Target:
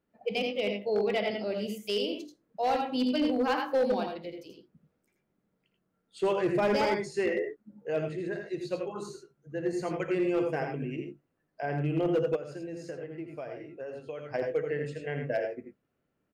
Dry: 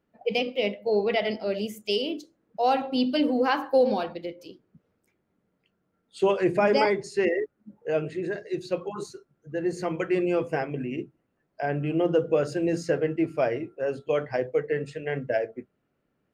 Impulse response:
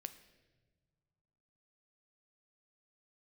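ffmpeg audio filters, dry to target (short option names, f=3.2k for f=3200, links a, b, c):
-filter_complex "[0:a]asplit=2[a][b];[b]aecho=0:1:54|83|97|103:0.141|0.501|0.178|0.251[c];[a][c]amix=inputs=2:normalize=0,asplit=3[d][e][f];[d]afade=t=out:st=12.35:d=0.02[g];[e]acompressor=threshold=-32dB:ratio=6,afade=t=in:st=12.35:d=0.02,afade=t=out:st=14.33:d=0.02[h];[f]afade=t=in:st=14.33:d=0.02[i];[g][h][i]amix=inputs=3:normalize=0,asoftclip=type=hard:threshold=-16dB,volume=-5dB"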